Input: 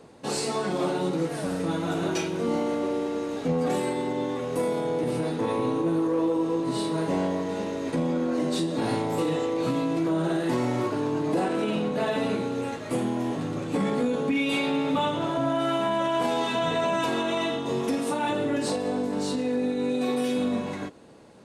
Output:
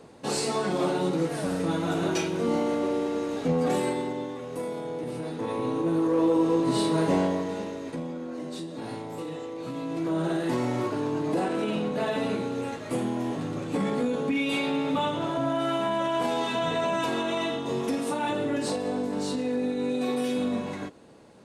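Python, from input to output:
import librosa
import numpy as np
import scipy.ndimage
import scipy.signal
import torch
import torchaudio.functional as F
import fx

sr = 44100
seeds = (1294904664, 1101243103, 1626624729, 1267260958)

y = fx.gain(x, sr, db=fx.line((3.89, 0.5), (4.34, -6.5), (5.18, -6.5), (6.36, 3.0), (7.12, 3.0), (8.16, -9.5), (9.66, -9.5), (10.17, -1.5)))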